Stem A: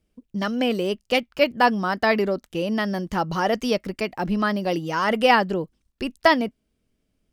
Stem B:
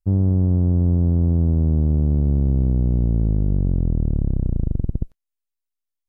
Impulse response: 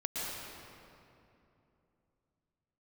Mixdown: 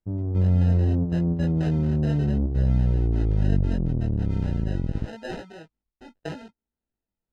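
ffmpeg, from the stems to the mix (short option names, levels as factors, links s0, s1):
-filter_complex "[0:a]acrusher=samples=39:mix=1:aa=0.000001,volume=0.188,asplit=2[s0][s1];[1:a]lowshelf=f=62:g=-7.5,volume=1.26[s2];[s1]apad=whole_len=268416[s3];[s2][s3]sidechaingate=range=0.501:threshold=0.00282:ratio=16:detection=peak[s4];[s0][s4]amix=inputs=2:normalize=0,lowpass=4700,flanger=delay=17:depth=4.1:speed=0.75"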